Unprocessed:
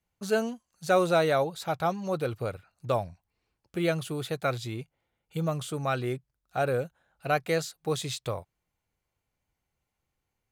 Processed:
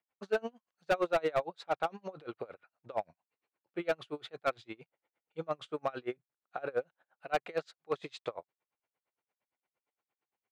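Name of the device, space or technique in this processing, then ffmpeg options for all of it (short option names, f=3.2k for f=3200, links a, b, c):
helicopter radio: -af "highpass=370,lowpass=2.6k,aeval=exprs='val(0)*pow(10,-30*(0.5-0.5*cos(2*PI*8.7*n/s))/20)':c=same,asoftclip=type=hard:threshold=-25dB,volume=2.5dB"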